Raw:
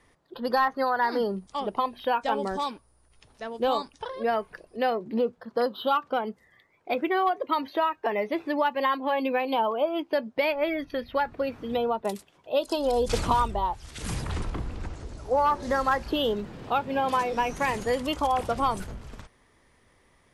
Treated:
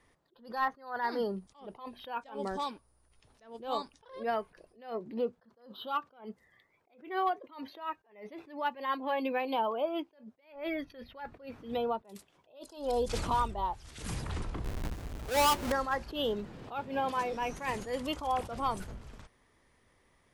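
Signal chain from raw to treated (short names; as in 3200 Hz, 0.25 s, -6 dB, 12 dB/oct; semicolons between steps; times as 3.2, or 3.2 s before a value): 14.64–15.72 half-waves squared off; attack slew limiter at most 140 dB/s; gain -5.5 dB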